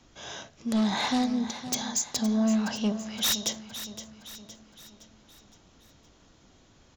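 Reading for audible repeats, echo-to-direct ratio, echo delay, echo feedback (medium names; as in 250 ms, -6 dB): 4, -11.5 dB, 515 ms, 49%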